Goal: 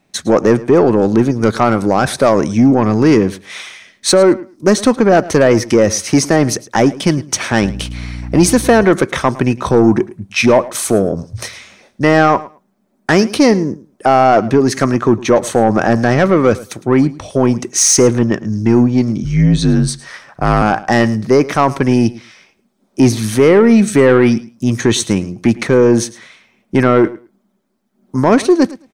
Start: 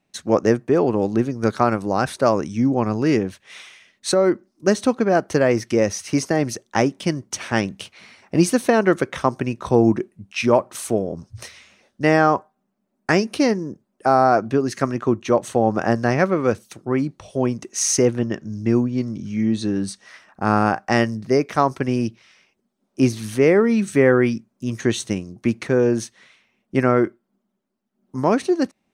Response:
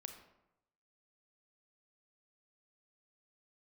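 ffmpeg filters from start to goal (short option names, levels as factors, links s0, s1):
-filter_complex "[0:a]bandreject=f=2800:w=14,asplit=2[s0][s1];[s1]alimiter=limit=0.237:level=0:latency=1:release=20,volume=1.41[s2];[s0][s2]amix=inputs=2:normalize=0,asettb=1/sr,asplit=3[s3][s4][s5];[s3]atrim=end=7.624[s6];[s4]atrim=start=7.62:end=8.84,asetpts=PTS-STARTPTS,afade=t=in:d=0.004:c=qsin,afade=t=out:st=1.216:d=0.004:c=qsin,aeval=exprs='val(0)+0.0447*(sin(2*PI*60*n/s)+sin(2*PI*2*60*n/s)/2+sin(2*PI*3*60*n/s)/3+sin(2*PI*4*60*n/s)/4+sin(2*PI*5*60*n/s)/5)':c=same[s7];[s5]atrim=start=8.836[s8];[s6][s7]acrossfade=d=0.004:c1=hsin:c2=qsin[s9];[s9][s8]acrossfade=d=0.004:c1=qsin:c2=hsin,asettb=1/sr,asplit=3[s10][s11][s12];[s10]atrim=end=19.244[s13];[s11]atrim=start=19.24:end=20.62,asetpts=PTS-STARTPTS,afade=t=in:d=0.004:c=qsin,afade=t=out:st=1.376:d=0.004:c=qsin,afreqshift=-58[s14];[s12]atrim=start=20.616[s15];[s13][s14]acrossfade=d=0.004:c1=hsin:c2=qsin[s16];[s16][s15]acrossfade=d=0.004:c1=qsin:c2=hsin,asoftclip=type=tanh:threshold=0.531,asplit=2[s17][s18];[s18]aecho=0:1:108|216:0.112|0.0168[s19];[s17][s19]amix=inputs=2:normalize=0,volume=1.58"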